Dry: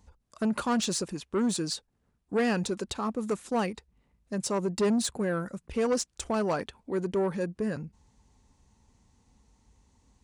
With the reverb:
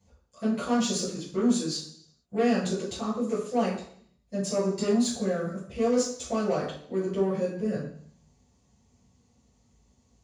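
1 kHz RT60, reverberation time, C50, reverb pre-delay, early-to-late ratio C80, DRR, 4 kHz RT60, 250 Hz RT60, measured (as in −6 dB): 0.60 s, 0.60 s, 5.0 dB, 3 ms, 9.0 dB, −11.5 dB, 0.70 s, 0.65 s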